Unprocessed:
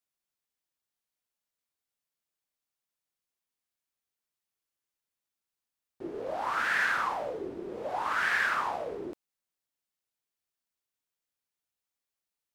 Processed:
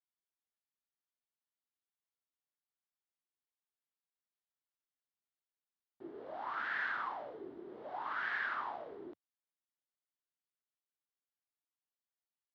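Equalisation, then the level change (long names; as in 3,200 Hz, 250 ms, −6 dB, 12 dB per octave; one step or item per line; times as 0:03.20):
loudspeaker in its box 100–3,800 Hz, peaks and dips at 100 Hz −8 dB, 180 Hz −7 dB, 510 Hz −7 dB, 2,500 Hz −8 dB
−8.5 dB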